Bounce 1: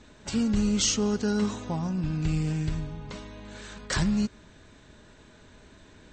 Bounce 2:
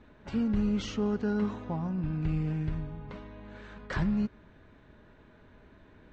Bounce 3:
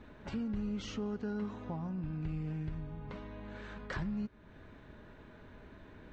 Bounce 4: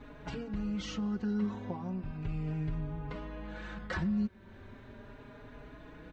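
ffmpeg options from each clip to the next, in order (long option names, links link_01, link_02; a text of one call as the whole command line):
ffmpeg -i in.wav -af "lowpass=2100,volume=-3dB" out.wav
ffmpeg -i in.wav -af "acompressor=threshold=-46dB:ratio=2,volume=2.5dB" out.wav
ffmpeg -i in.wav -filter_complex "[0:a]asplit=2[link_01][link_02];[link_02]adelay=4.4,afreqshift=0.36[link_03];[link_01][link_03]amix=inputs=2:normalize=1,volume=6.5dB" out.wav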